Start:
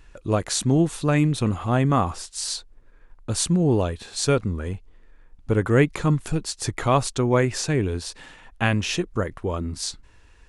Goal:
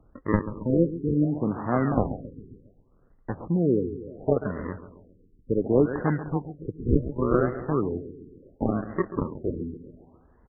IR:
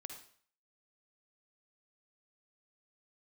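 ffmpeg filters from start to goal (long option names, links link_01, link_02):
-filter_complex "[0:a]highpass=frequency=96:poles=1,aemphasis=mode=reproduction:type=75kf,afftfilt=real='re*(1-between(b*sr/4096,2200,6900))':imag='im*(1-between(b*sr/4096,2200,6900))':win_size=4096:overlap=0.75,highshelf=frequency=2100:gain=-2.5,acrossover=split=160|1700[link_01][link_02][link_03];[link_01]acompressor=threshold=-40dB:ratio=5[link_04];[link_04][link_02][link_03]amix=inputs=3:normalize=0,acrusher=samples=41:mix=1:aa=0.000001:lfo=1:lforange=41:lforate=0.46,asplit=2[link_05][link_06];[link_06]aecho=0:1:136|272|408|544|680:0.237|0.123|0.0641|0.0333|0.0173[link_07];[link_05][link_07]amix=inputs=2:normalize=0,afftfilt=real='re*lt(b*sr/1024,470*pow(2100/470,0.5+0.5*sin(2*PI*0.69*pts/sr)))':imag='im*lt(b*sr/1024,470*pow(2100/470,0.5+0.5*sin(2*PI*0.69*pts/sr)))':win_size=1024:overlap=0.75"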